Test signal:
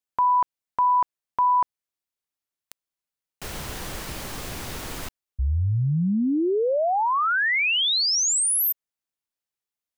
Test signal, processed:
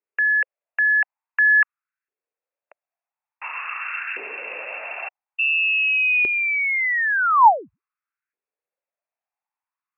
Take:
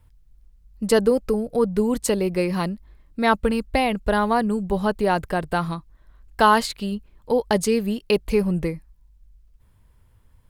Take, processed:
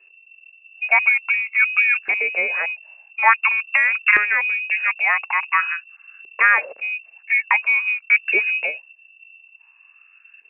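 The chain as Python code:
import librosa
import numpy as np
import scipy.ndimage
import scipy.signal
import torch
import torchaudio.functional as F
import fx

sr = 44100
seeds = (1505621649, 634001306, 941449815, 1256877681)

y = fx.freq_invert(x, sr, carrier_hz=2700)
y = fx.filter_lfo_highpass(y, sr, shape='saw_up', hz=0.48, low_hz=390.0, high_hz=1600.0, q=5.1)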